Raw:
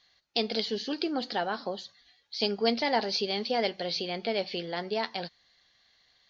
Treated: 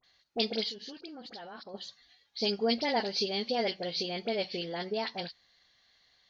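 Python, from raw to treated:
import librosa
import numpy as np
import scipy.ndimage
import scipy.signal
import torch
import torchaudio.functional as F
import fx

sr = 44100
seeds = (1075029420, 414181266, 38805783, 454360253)

y = fx.level_steps(x, sr, step_db=22, at=(0.68, 1.74))
y = fx.dynamic_eq(y, sr, hz=1200.0, q=0.89, threshold_db=-42.0, ratio=4.0, max_db=-4)
y = fx.dispersion(y, sr, late='highs', ms=41.0, hz=1600.0)
y = F.gain(torch.from_numpy(y), -1.0).numpy()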